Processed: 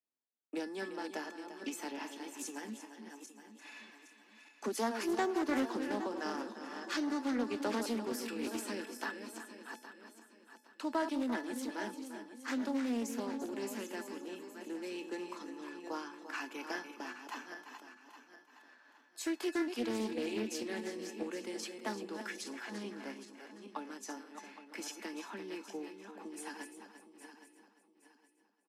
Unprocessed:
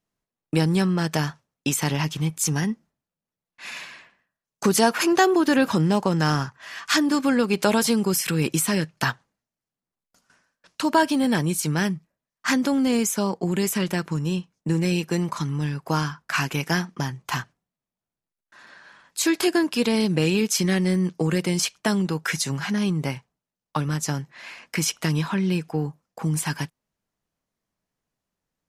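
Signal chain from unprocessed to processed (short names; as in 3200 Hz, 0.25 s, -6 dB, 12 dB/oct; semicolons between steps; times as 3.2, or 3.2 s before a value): regenerating reverse delay 0.408 s, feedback 54%, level -8 dB; steep high-pass 220 Hz 96 dB/oct; tilt -1.5 dB/oct; resonator 870 Hz, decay 0.28 s, mix 80%; echo 0.345 s -11.5 dB; Doppler distortion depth 0.22 ms; gain -3 dB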